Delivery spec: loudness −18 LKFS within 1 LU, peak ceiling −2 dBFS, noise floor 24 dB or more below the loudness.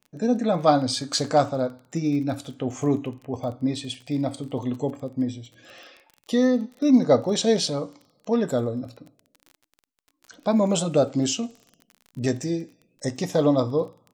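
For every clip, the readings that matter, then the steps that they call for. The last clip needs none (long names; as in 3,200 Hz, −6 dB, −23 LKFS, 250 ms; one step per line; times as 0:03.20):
crackle rate 26 per second; integrated loudness −24.5 LKFS; sample peak −5.0 dBFS; target loudness −18.0 LKFS
→ click removal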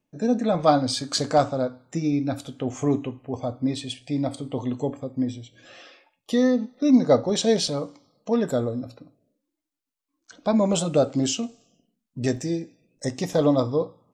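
crackle rate 0.14 per second; integrated loudness −24.5 LKFS; sample peak −5.0 dBFS; target loudness −18.0 LKFS
→ level +6.5 dB
brickwall limiter −2 dBFS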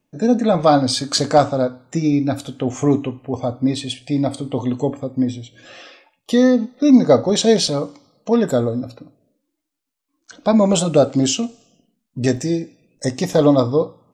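integrated loudness −18.0 LKFS; sample peak −2.0 dBFS; background noise floor −75 dBFS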